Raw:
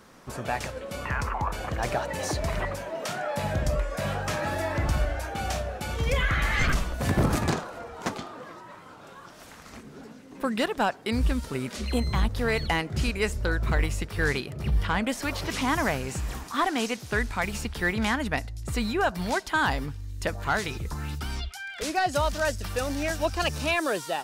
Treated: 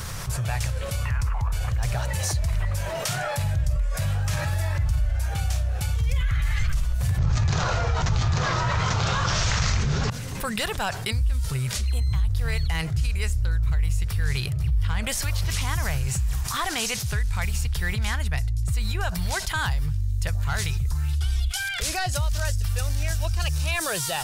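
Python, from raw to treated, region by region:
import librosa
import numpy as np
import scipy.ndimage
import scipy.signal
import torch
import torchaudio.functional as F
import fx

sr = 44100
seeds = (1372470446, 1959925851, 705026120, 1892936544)

y = fx.chain(x, sr, fx.steep_lowpass(hz=6800.0, slope=48),
    fx.echo_single(ms=843, db=-12.5),
    fx.env_flatten(amount_pct=100), at=(7.18, 10.1))
y = fx.chain(y, sr, fx.cvsd(bps=64000),
    fx.peak_eq(hz=3300.0, db=8.5, octaves=0.43),
    fx.comb(ms=2.7, depth=0.7), at=(21.13, 21.69))
y = fx.curve_eq(y, sr, hz=(120.0, 260.0, 410.0, 9800.0), db=(0, -29, -22, -6))
y = fx.env_flatten(y, sr, amount_pct=70)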